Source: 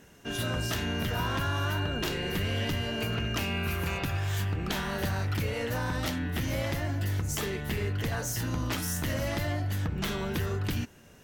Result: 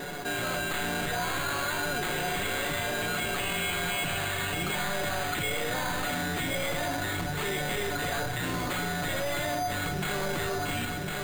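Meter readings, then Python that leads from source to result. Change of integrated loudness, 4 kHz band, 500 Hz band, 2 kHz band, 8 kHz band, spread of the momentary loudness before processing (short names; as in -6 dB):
+1.5 dB, +3.0 dB, +2.5 dB, +5.0 dB, +3.5 dB, 2 LU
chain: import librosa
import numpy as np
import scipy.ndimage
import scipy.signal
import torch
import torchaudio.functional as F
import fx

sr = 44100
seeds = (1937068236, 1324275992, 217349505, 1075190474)

y = fx.bass_treble(x, sr, bass_db=-10, treble_db=-1)
y = y + 0.38 * np.pad(y, (int(6.9 * sr / 1000.0), 0))[:len(y)]
y = fx.dynamic_eq(y, sr, hz=3000.0, q=0.87, threshold_db=-49.0, ratio=4.0, max_db=6)
y = fx.vibrato(y, sr, rate_hz=1.1, depth_cents=16.0)
y = fx.fold_sine(y, sr, drive_db=10, ceiling_db=-18.0)
y = fx.comb_fb(y, sr, f0_hz=720.0, decay_s=0.28, harmonics='all', damping=0.0, mix_pct=80)
y = fx.echo_feedback(y, sr, ms=1053, feedback_pct=45, wet_db=-10)
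y = fx.room_shoebox(y, sr, seeds[0], volume_m3=3100.0, walls='furnished', distance_m=1.0)
y = np.repeat(scipy.signal.resample_poly(y, 1, 8), 8)[:len(y)]
y = fx.env_flatten(y, sr, amount_pct=70)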